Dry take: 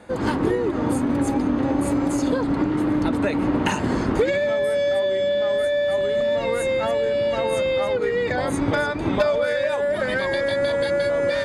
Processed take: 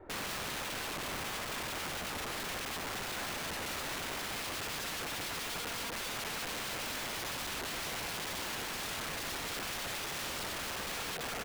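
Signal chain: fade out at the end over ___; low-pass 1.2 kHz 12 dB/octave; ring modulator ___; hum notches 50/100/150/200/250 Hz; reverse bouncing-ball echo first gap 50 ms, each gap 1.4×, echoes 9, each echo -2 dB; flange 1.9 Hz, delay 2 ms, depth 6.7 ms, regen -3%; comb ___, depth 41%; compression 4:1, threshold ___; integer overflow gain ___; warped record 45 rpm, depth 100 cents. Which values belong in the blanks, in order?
1.13 s, 110 Hz, 2.2 ms, -29 dBFS, 34 dB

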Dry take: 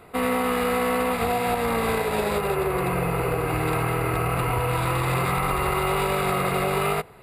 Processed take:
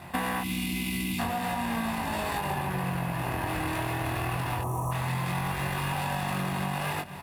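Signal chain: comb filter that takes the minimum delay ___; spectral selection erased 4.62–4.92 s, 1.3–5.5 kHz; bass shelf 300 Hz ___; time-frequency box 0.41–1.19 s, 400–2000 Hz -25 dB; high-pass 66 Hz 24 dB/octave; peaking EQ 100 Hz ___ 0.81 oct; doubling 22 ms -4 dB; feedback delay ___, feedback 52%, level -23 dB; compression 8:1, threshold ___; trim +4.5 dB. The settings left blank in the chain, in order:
1.1 ms, +5.5 dB, -4 dB, 240 ms, -32 dBFS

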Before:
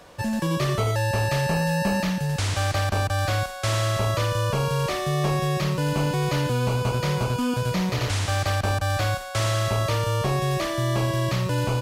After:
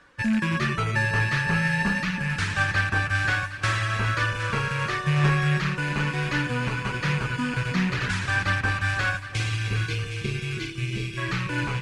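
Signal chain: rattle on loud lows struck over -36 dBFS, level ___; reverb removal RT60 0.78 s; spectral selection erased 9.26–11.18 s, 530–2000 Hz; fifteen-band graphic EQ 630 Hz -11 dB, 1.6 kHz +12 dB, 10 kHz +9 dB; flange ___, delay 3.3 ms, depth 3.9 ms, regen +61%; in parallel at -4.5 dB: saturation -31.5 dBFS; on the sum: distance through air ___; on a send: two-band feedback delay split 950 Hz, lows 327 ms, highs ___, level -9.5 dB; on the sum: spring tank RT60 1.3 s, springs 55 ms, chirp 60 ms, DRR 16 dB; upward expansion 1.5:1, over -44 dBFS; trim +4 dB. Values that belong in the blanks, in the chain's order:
-23 dBFS, 0.47 Hz, 97 m, 764 ms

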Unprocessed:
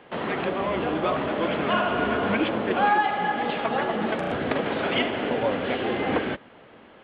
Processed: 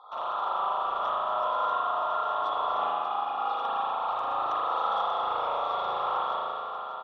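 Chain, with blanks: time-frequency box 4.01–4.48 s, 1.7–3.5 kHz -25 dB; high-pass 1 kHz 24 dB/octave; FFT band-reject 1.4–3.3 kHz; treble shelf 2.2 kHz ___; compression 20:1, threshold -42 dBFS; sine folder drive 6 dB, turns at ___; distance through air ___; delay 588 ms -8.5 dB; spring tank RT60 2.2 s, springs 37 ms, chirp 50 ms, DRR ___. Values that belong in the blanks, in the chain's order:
-11.5 dB, -32 dBFS, 73 m, -8.5 dB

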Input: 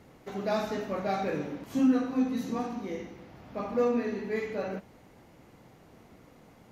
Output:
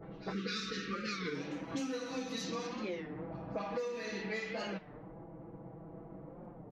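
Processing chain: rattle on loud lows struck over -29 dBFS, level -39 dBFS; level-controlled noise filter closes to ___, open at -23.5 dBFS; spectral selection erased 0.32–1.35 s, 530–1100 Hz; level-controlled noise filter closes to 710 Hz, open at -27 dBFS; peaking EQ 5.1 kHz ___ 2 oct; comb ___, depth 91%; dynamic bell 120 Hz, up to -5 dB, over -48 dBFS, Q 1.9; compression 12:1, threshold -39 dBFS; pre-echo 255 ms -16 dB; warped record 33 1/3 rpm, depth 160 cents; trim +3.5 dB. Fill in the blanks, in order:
1.2 kHz, +15 dB, 6.1 ms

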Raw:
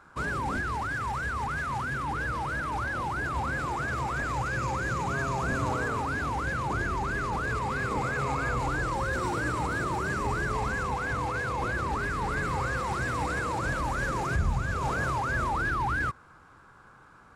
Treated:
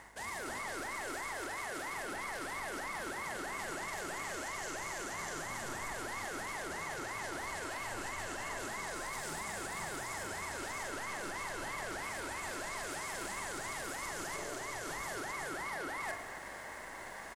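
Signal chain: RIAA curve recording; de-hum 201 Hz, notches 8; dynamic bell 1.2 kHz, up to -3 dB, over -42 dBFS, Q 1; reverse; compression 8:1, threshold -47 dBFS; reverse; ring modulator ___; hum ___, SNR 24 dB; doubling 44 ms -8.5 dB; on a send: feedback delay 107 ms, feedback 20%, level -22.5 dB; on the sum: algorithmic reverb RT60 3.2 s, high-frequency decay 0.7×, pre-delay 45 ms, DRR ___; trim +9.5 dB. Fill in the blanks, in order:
510 Hz, 50 Hz, 7 dB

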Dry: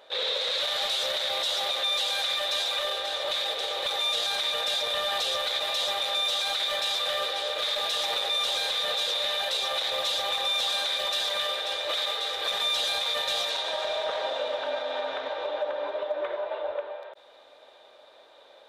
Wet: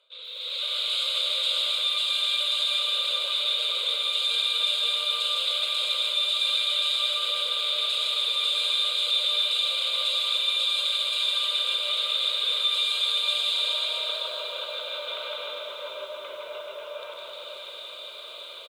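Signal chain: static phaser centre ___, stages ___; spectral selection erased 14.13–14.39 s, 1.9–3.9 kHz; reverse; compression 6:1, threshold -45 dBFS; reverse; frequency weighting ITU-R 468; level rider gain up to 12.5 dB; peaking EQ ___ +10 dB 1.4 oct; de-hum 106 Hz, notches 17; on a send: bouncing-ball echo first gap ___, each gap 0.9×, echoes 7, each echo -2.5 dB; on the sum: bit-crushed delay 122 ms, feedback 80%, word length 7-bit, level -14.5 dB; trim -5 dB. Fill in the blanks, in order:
1.2 kHz, 8, 230 Hz, 160 ms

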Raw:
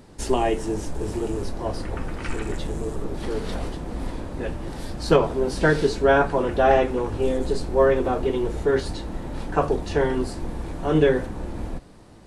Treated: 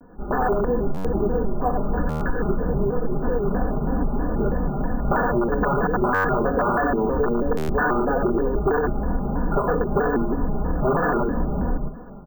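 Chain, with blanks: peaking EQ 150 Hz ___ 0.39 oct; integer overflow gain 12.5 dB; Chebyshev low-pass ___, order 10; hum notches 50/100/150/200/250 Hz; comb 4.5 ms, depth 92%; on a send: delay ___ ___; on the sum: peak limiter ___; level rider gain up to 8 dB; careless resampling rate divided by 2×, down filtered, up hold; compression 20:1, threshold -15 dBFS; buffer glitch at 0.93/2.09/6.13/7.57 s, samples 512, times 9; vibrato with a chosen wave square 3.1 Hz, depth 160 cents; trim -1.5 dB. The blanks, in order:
+6.5 dB, 1.6 kHz, 103 ms, -5.5 dB, -12 dBFS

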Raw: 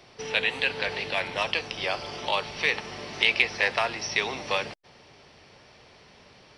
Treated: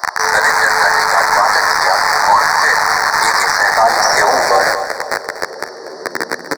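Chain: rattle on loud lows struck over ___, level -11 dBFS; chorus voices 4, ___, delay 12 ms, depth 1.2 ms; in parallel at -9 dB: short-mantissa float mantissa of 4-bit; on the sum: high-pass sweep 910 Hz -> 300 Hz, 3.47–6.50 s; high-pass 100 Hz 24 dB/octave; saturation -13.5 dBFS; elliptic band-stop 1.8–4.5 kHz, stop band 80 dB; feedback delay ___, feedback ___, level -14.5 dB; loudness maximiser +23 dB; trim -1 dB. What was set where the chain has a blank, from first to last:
-55 dBFS, 2.7 Hz, 241 ms, 42%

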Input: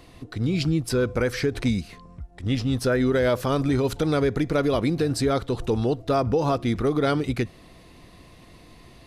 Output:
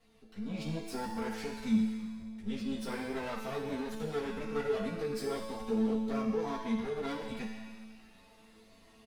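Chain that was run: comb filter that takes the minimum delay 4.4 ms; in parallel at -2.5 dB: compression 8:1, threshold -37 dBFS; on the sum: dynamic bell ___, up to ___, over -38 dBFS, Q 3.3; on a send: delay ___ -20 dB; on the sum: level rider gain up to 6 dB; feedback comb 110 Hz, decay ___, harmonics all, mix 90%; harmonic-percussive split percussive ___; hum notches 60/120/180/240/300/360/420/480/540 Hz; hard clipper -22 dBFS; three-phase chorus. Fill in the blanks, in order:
200 Hz, +5 dB, 272 ms, 1.8 s, -3 dB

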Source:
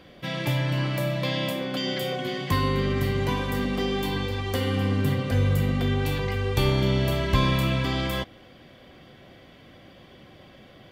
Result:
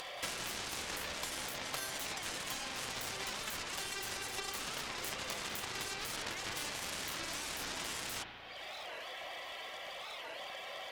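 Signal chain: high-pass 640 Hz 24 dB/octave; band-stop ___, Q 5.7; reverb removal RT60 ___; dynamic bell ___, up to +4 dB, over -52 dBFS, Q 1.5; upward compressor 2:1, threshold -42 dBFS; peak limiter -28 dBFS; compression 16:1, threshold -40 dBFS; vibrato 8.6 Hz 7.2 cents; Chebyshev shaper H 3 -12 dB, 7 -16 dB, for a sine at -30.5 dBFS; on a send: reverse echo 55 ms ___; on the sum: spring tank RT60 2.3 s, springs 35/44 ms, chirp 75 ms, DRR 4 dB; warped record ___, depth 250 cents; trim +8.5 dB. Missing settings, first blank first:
1.5 kHz, 0.71 s, 5.7 kHz, -19.5 dB, 45 rpm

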